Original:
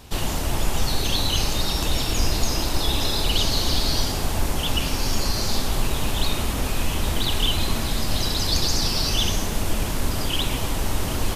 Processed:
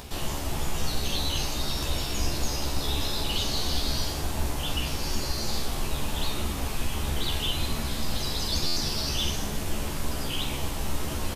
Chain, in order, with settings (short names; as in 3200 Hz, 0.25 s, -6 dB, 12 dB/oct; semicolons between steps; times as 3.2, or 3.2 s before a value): upward compressor, threshold -27 dBFS; doubler 14 ms -3 dB; flutter echo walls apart 7.5 m, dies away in 0.31 s; stuck buffer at 8.66, samples 512, times 8; gain -8 dB